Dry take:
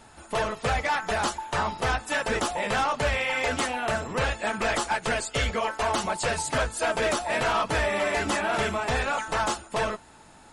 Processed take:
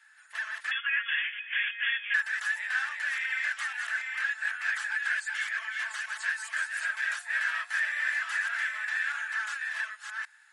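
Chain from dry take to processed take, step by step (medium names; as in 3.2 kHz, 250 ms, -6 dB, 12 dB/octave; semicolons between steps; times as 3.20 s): chunks repeated in reverse 466 ms, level -3.5 dB; 0.71–2.14 s: frequency inversion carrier 3.4 kHz; ladder high-pass 1.6 kHz, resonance 80%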